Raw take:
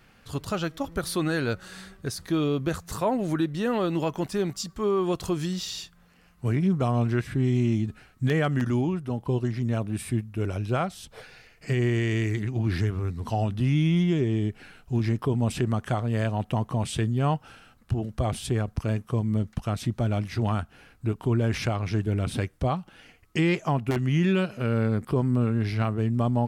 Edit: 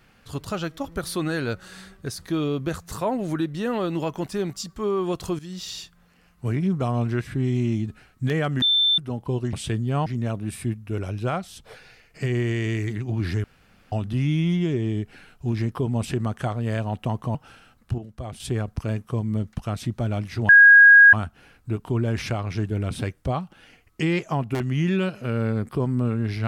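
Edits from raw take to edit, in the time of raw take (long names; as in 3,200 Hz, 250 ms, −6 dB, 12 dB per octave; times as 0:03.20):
0:05.39–0:05.70: fade in, from −16 dB
0:08.62–0:08.98: beep over 3,550 Hz −16 dBFS
0:12.91–0:13.39: fill with room tone
0:16.82–0:17.35: move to 0:09.53
0:17.98–0:18.40: clip gain −8 dB
0:20.49: insert tone 1,640 Hz −7 dBFS 0.64 s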